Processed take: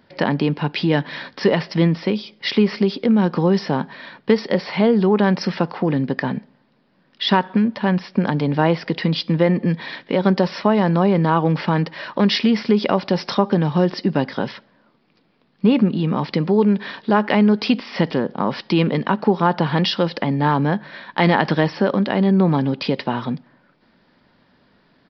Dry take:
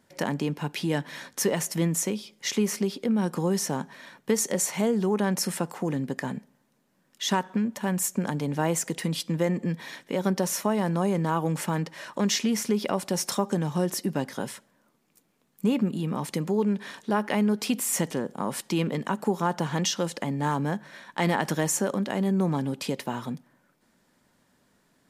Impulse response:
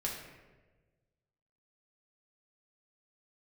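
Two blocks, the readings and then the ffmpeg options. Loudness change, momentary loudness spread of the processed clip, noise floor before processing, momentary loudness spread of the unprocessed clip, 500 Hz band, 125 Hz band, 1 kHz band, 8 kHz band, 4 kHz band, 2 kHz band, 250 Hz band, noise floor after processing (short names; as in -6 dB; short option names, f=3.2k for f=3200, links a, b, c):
+8.5 dB, 8 LU, -68 dBFS, 7 LU, +9.0 dB, +9.0 dB, +9.0 dB, under -15 dB, +7.5 dB, +9.0 dB, +9.0 dB, -60 dBFS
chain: -af "aresample=11025,aresample=44100,volume=9dB"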